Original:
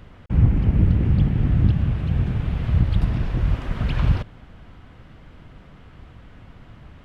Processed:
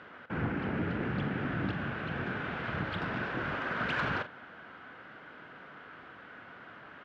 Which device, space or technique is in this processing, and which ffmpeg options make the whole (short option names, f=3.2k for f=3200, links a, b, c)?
intercom: -filter_complex "[0:a]highpass=340,lowpass=3.5k,equalizer=f=1.5k:t=o:w=0.48:g=11,asoftclip=type=tanh:threshold=-23dB,asplit=2[a][b];[b]adelay=42,volume=-11dB[c];[a][c]amix=inputs=2:normalize=0"